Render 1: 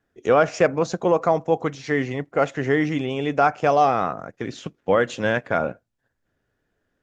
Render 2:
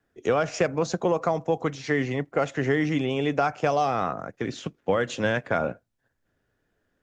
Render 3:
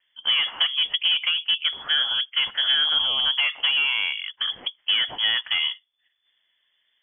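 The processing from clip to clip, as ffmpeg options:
-filter_complex "[0:a]acrossover=split=150|3000[s0][s1][s2];[s1]acompressor=threshold=0.1:ratio=6[s3];[s0][s3][s2]amix=inputs=3:normalize=0"
-filter_complex "[0:a]acrossover=split=280[s0][s1];[s1]asoftclip=type=tanh:threshold=0.0944[s2];[s0][s2]amix=inputs=2:normalize=0,lowpass=f=3000:t=q:w=0.5098,lowpass=f=3000:t=q:w=0.6013,lowpass=f=3000:t=q:w=0.9,lowpass=f=3000:t=q:w=2.563,afreqshift=-3500,volume=1.5"

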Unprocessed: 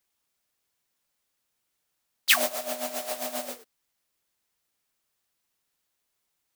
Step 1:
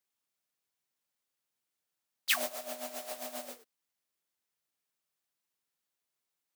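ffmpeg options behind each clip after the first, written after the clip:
-af "highpass=100,volume=0.376"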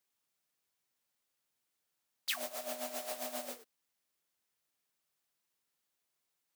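-af "acompressor=threshold=0.0112:ratio=3,volume=1.33"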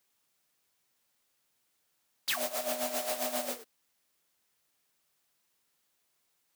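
-af "asoftclip=type=hard:threshold=0.0178,volume=2.51"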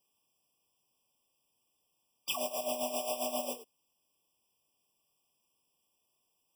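-af "afftfilt=real='re*eq(mod(floor(b*sr/1024/1200),2),0)':imag='im*eq(mod(floor(b*sr/1024/1200),2),0)':win_size=1024:overlap=0.75"

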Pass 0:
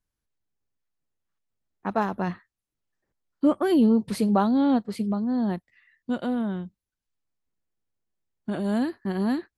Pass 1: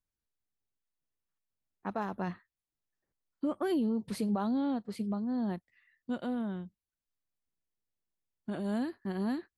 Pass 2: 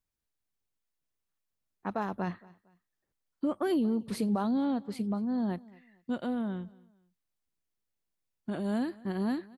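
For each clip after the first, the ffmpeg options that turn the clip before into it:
-af "alimiter=limit=0.15:level=0:latency=1:release=102,volume=0.422"
-af "aecho=1:1:228|456:0.0708|0.0227,volume=1.26"

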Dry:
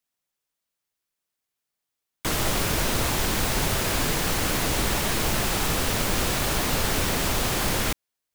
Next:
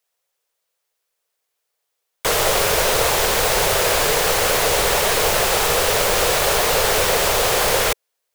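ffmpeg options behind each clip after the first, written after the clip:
-af "lowshelf=f=360:t=q:w=3:g=-8.5,volume=2.37"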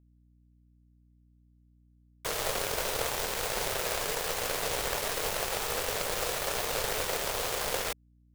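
-af "aeval=exprs='0.708*(cos(1*acos(clip(val(0)/0.708,-1,1)))-cos(1*PI/2))+0.1*(cos(3*acos(clip(val(0)/0.708,-1,1)))-cos(3*PI/2))+0.0447*(cos(7*acos(clip(val(0)/0.708,-1,1)))-cos(7*PI/2))':c=same,aeval=exprs='val(0)+0.00224*(sin(2*PI*60*n/s)+sin(2*PI*2*60*n/s)/2+sin(2*PI*3*60*n/s)/3+sin(2*PI*4*60*n/s)/4+sin(2*PI*5*60*n/s)/5)':c=same,volume=0.398"

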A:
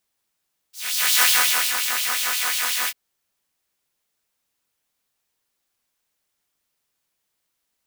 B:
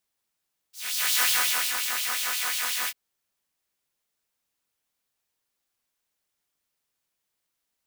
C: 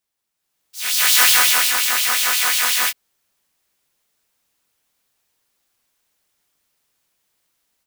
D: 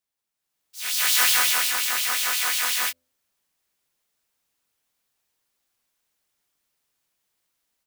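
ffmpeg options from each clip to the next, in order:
-af "asoftclip=type=tanh:threshold=0.335,volume=0.596"
-af "dynaudnorm=f=340:g=3:m=3.35"
-af "bandreject=f=85.01:t=h:w=4,bandreject=f=170.02:t=h:w=4,bandreject=f=255.03:t=h:w=4,bandreject=f=340.04:t=h:w=4,bandreject=f=425.05:t=h:w=4,bandreject=f=510.06:t=h:w=4,bandreject=f=595.07:t=h:w=4,volume=0.501"

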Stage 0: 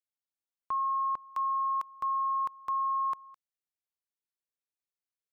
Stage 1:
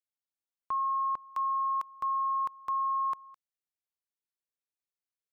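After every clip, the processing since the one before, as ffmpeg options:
-af anull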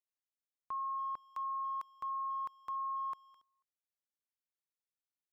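-filter_complex "[0:a]asplit=2[s0][s1];[s1]adelay=280,highpass=300,lowpass=3400,asoftclip=type=hard:threshold=0.0178,volume=0.0708[s2];[s0][s2]amix=inputs=2:normalize=0,volume=0.398"

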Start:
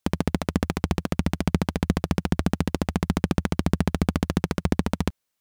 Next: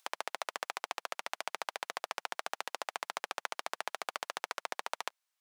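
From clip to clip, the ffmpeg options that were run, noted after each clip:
-af "highpass=f=680:w=0.5412,highpass=f=680:w=1.3066,highshelf=f=12000:g=-7,acompressor=mode=upward:threshold=0.00178:ratio=2.5,volume=0.631"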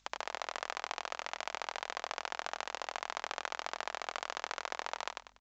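-af "aeval=exprs='val(0)+0.000251*(sin(2*PI*50*n/s)+sin(2*PI*2*50*n/s)/2+sin(2*PI*3*50*n/s)/3+sin(2*PI*4*50*n/s)/4+sin(2*PI*5*50*n/s)/5)':c=same,aecho=1:1:96|192|288|384:0.631|0.196|0.0606|0.0188,volume=0.841" -ar 16000 -c:a pcm_mulaw

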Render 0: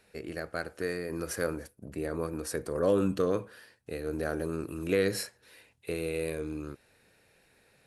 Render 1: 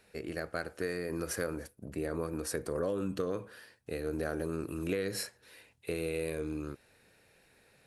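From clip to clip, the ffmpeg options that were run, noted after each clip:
-af "acompressor=threshold=0.0355:ratio=12"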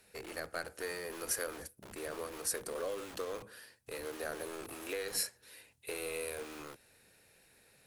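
-filter_complex "[0:a]aemphasis=mode=production:type=cd,acrossover=split=360[s0][s1];[s0]aeval=exprs='(mod(158*val(0)+1,2)-1)/158':c=same[s2];[s2][s1]amix=inputs=2:normalize=0,volume=0.75"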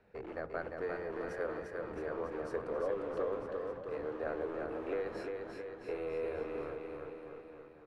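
-af "lowpass=1200,aecho=1:1:350|665|948.5|1204|1433:0.631|0.398|0.251|0.158|0.1,volume=1.41"

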